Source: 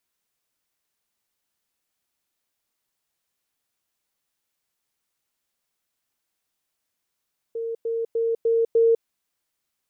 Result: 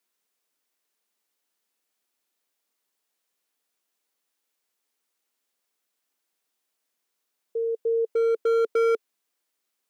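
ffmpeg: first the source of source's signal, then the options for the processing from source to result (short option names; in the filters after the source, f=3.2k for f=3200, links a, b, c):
-f lavfi -i "aevalsrc='pow(10,(-26+3*floor(t/0.3))/20)*sin(2*PI*458*t)*clip(min(mod(t,0.3),0.2-mod(t,0.3))/0.005,0,1)':d=1.5:s=44100"
-af "equalizer=f=440:t=o:w=0.29:g=3.5,asoftclip=type=hard:threshold=-19.5dB,highpass=f=210:w=0.5412,highpass=f=210:w=1.3066"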